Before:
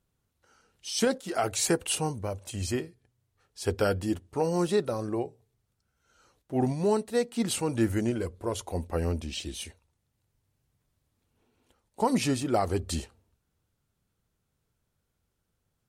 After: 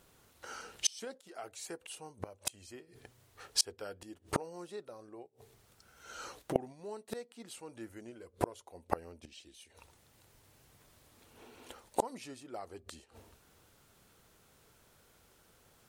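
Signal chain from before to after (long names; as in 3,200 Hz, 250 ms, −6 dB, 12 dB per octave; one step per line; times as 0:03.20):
bass and treble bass −11 dB, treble −1 dB
0:05.26–0:06.56: downward compressor 12 to 1, threshold −54 dBFS, peak gain reduction 22 dB
gate with flip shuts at −32 dBFS, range −35 dB
level +18 dB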